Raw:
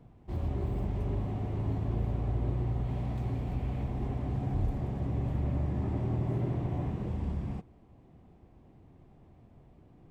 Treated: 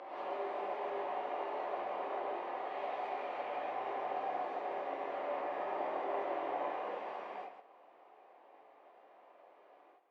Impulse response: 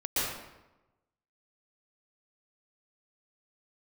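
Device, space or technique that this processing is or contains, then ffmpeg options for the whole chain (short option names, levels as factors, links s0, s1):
ghost voice: -filter_complex "[0:a]areverse[s0];[1:a]atrim=start_sample=2205[s1];[s0][s1]afir=irnorm=-1:irlink=0,areverse,highpass=f=580:w=0.5412,highpass=f=580:w=1.3066,lowpass=2700"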